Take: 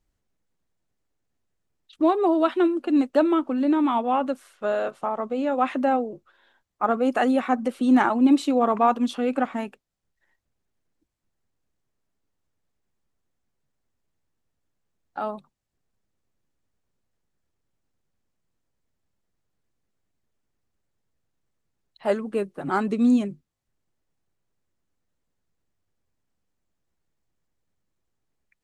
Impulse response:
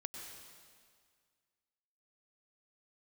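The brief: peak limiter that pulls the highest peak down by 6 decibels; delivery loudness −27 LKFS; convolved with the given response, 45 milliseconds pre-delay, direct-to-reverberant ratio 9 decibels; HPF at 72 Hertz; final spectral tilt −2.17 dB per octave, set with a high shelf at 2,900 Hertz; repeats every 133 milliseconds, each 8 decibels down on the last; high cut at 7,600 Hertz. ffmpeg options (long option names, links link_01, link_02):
-filter_complex "[0:a]highpass=72,lowpass=7600,highshelf=frequency=2900:gain=-4.5,alimiter=limit=-13dB:level=0:latency=1,aecho=1:1:133|266|399|532|665:0.398|0.159|0.0637|0.0255|0.0102,asplit=2[link_01][link_02];[1:a]atrim=start_sample=2205,adelay=45[link_03];[link_02][link_03]afir=irnorm=-1:irlink=0,volume=-7dB[link_04];[link_01][link_04]amix=inputs=2:normalize=0,volume=-3.5dB"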